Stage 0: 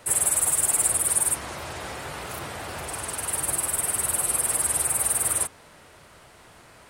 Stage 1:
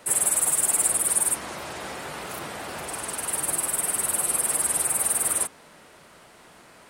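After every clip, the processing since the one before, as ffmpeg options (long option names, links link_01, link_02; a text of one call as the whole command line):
ffmpeg -i in.wav -af "lowshelf=frequency=140:width_type=q:width=1.5:gain=-7" out.wav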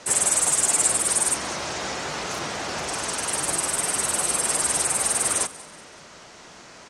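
ffmpeg -i in.wav -filter_complex "[0:a]asplit=2[link_01][link_02];[link_02]aeval=exprs='0.473*sin(PI/2*1.58*val(0)/0.473)':channel_layout=same,volume=-11.5dB[link_03];[link_01][link_03]amix=inputs=2:normalize=0,lowpass=frequency=6200:width_type=q:width=2.8,aecho=1:1:189|378|567:0.1|0.042|0.0176" out.wav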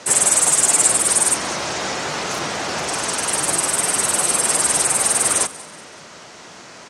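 ffmpeg -i in.wav -af "highpass=86,volume=5.5dB" out.wav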